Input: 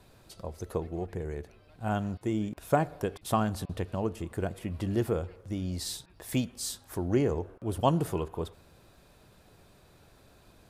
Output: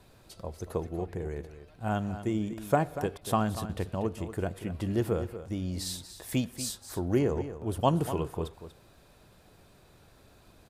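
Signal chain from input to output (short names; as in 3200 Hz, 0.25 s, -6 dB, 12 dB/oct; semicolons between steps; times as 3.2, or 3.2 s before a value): echo 0.238 s -12 dB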